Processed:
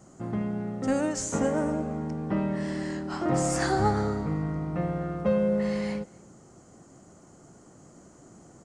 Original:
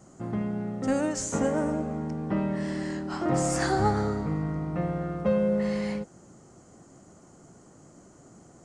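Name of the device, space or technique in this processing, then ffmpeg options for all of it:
ducked delay: -filter_complex "[0:a]asplit=3[link_01][link_02][link_03];[link_02]adelay=243,volume=-6dB[link_04];[link_03]apad=whole_len=392078[link_05];[link_04][link_05]sidechaincompress=threshold=-47dB:ratio=8:attack=16:release=1500[link_06];[link_01][link_06]amix=inputs=2:normalize=0"

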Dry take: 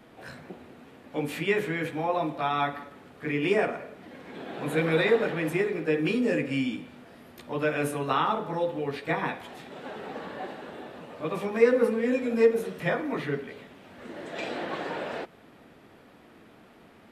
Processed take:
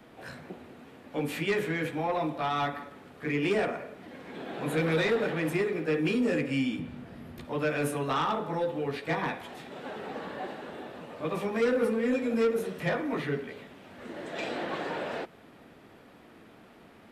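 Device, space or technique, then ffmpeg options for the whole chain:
one-band saturation: -filter_complex "[0:a]acrossover=split=240|4500[link_01][link_02][link_03];[link_02]asoftclip=type=tanh:threshold=-23dB[link_04];[link_01][link_04][link_03]amix=inputs=3:normalize=0,asettb=1/sr,asplit=3[link_05][link_06][link_07];[link_05]atrim=end=6.794[link_08];[link_06]atrim=start=6.79:end=7.45,asetpts=PTS-STARTPTS,afade=type=in:duration=0.004:curve=qsin,afade=type=out:start_time=0.656:duration=0.004:curve=qsin,bass=frequency=250:gain=12,treble=frequency=4000:gain=-4[link_09];[link_07]atrim=start=7.446[link_10];[link_08][link_09]acrossfade=duration=0.004:curve1=hsin:curve2=qsin[link_11];[link_11][link_10]acrossfade=duration=0.004:curve1=qsin:curve2=hsin"

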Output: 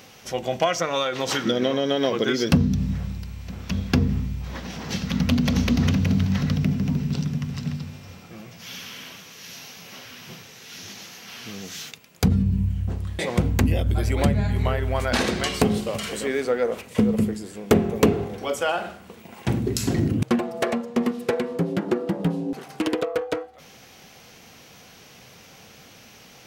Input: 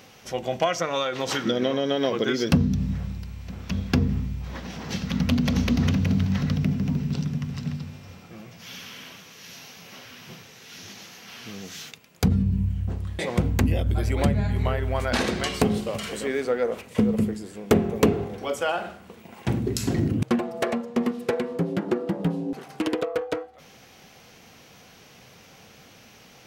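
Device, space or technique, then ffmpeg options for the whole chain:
exciter from parts: -filter_complex "[0:a]asplit=2[link_01][link_02];[link_02]highpass=frequency=4500:poles=1,asoftclip=type=tanh:threshold=-33dB,volume=-7dB[link_03];[link_01][link_03]amix=inputs=2:normalize=0,volume=1.5dB"

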